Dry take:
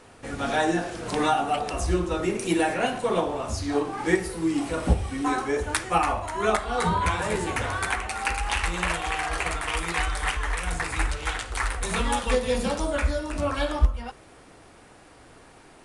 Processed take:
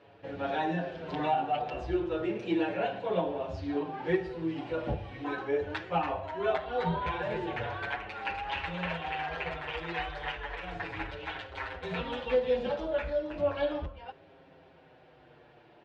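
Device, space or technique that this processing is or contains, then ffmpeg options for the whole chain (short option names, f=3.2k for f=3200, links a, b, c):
barber-pole flanger into a guitar amplifier: -filter_complex "[0:a]asplit=2[a][b];[b]adelay=6.7,afreqshift=-0.37[c];[a][c]amix=inputs=2:normalize=1,asoftclip=type=tanh:threshold=-14dB,highpass=100,equalizer=f=160:t=q:w=4:g=4,equalizer=f=230:t=q:w=4:g=-8,equalizer=f=560:t=q:w=4:g=4,equalizer=f=1.2k:t=q:w=4:g=-9,equalizer=f=2.1k:t=q:w=4:g=-5,lowpass=f=3.4k:w=0.5412,lowpass=f=3.4k:w=1.3066,volume=-2dB"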